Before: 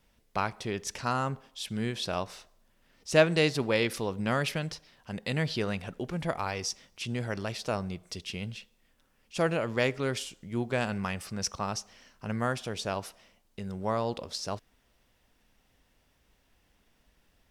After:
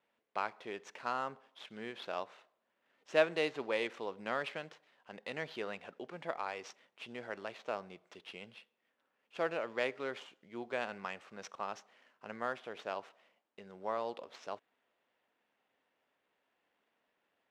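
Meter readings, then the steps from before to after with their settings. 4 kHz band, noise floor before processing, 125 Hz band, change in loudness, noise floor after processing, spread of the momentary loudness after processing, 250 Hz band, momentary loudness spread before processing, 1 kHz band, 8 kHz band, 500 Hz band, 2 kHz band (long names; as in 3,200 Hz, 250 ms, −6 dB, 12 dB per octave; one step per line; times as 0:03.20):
−11.5 dB, −69 dBFS, −23.5 dB, −8.0 dB, −82 dBFS, 15 LU, −14.0 dB, 12 LU, −6.0 dB, −20.0 dB, −7.0 dB, −6.5 dB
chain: running median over 9 samples
band-pass filter 400–5,100 Hz
level −5.5 dB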